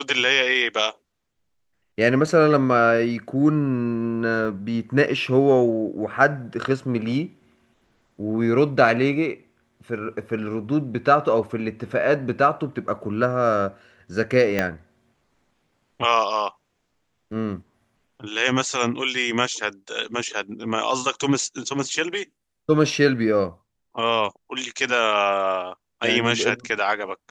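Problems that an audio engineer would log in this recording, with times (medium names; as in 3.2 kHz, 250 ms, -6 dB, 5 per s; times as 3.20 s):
4.45 s: dropout 2.8 ms
14.59 s: pop -8 dBFS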